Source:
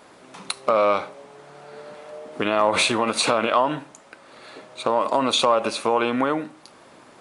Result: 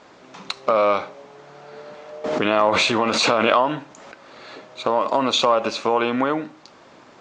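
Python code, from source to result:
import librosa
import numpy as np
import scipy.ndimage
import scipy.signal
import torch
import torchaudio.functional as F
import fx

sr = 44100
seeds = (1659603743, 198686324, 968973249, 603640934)

y = scipy.signal.sosfilt(scipy.signal.butter(8, 7100.0, 'lowpass', fs=sr, output='sos'), x)
y = fx.pre_swell(y, sr, db_per_s=25.0, at=(2.24, 4.65))
y = y * 10.0 ** (1.0 / 20.0)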